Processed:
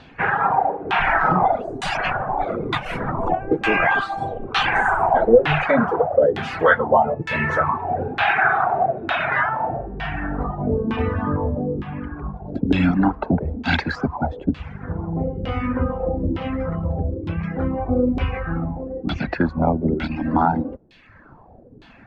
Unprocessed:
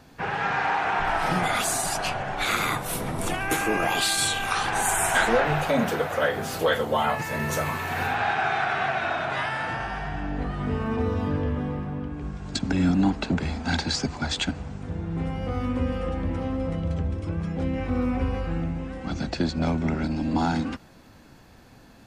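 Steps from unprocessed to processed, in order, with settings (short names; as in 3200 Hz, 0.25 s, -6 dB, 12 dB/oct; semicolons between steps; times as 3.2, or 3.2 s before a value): LFO low-pass saw down 1.1 Hz 370–3500 Hz; reverb removal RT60 0.98 s; gain +5.5 dB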